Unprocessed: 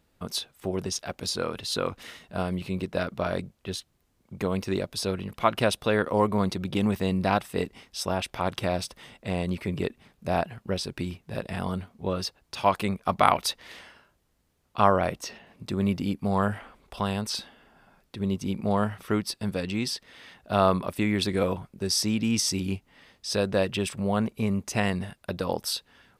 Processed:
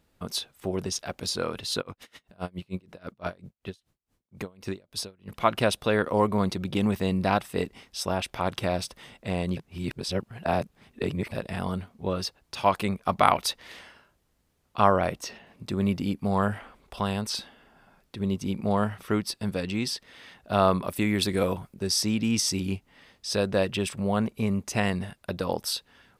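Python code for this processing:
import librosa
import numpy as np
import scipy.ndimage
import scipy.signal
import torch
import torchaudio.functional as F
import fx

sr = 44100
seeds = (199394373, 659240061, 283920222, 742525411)

y = fx.tremolo_db(x, sr, hz=fx.line((1.8, 8.4), (5.27, 2.8)), depth_db=31, at=(1.8, 5.27), fade=0.02)
y = fx.high_shelf(y, sr, hz=8900.0, db=10.0, at=(20.85, 21.74))
y = fx.edit(y, sr, fx.reverse_span(start_s=9.57, length_s=1.75), tone=tone)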